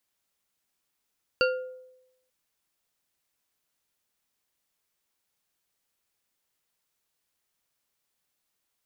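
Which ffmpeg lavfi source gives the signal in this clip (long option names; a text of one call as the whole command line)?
ffmpeg -f lavfi -i "aevalsrc='0.1*pow(10,-3*t/0.9)*sin(2*PI*511*t)+0.0794*pow(10,-3*t/0.443)*sin(2*PI*1408.8*t)+0.0631*pow(10,-3*t/0.276)*sin(2*PI*2761.4*t)+0.0501*pow(10,-3*t/0.194)*sin(2*PI*4564.8*t)':duration=0.89:sample_rate=44100" out.wav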